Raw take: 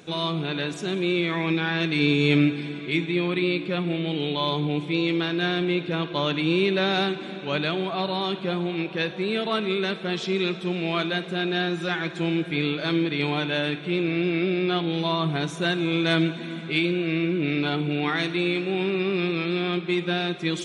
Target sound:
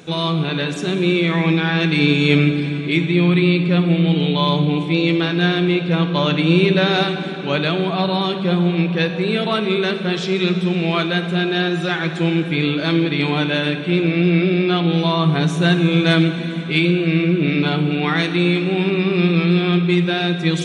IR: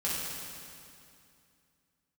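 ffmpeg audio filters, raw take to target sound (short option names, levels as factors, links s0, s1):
-filter_complex "[0:a]asplit=2[s0][s1];[1:a]atrim=start_sample=2205,lowshelf=f=270:g=9[s2];[s1][s2]afir=irnorm=-1:irlink=0,volume=0.168[s3];[s0][s3]amix=inputs=2:normalize=0,volume=1.68"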